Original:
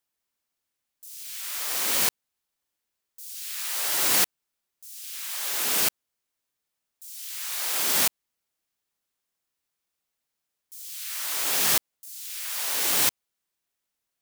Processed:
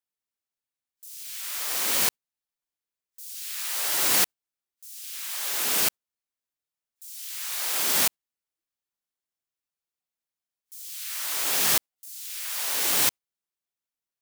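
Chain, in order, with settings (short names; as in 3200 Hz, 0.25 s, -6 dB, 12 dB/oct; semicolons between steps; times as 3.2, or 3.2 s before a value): spectral noise reduction 10 dB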